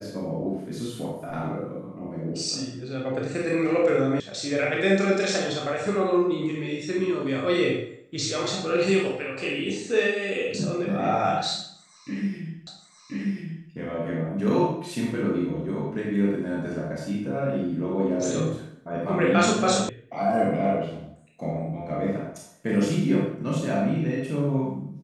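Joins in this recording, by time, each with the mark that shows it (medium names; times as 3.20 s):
4.20 s: sound stops dead
12.67 s: repeat of the last 1.03 s
19.89 s: sound stops dead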